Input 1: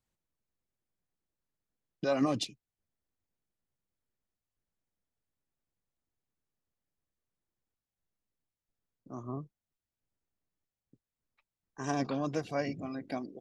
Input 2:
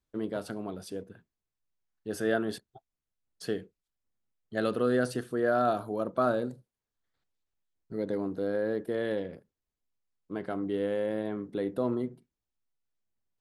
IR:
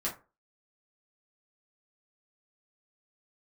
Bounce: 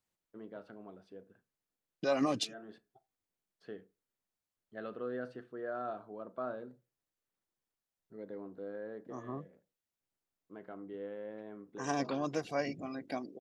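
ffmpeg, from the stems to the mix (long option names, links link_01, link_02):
-filter_complex "[0:a]volume=0dB,asplit=2[link_01][link_02];[1:a]lowpass=2400,adelay=200,volume=-13dB,asplit=2[link_03][link_04];[link_04]volume=-16dB[link_05];[link_02]apad=whole_len=599816[link_06];[link_03][link_06]sidechaincompress=threshold=-49dB:ratio=8:attack=8.2:release=257[link_07];[2:a]atrim=start_sample=2205[link_08];[link_05][link_08]afir=irnorm=-1:irlink=0[link_09];[link_01][link_07][link_09]amix=inputs=3:normalize=0,lowshelf=frequency=150:gain=-11.5"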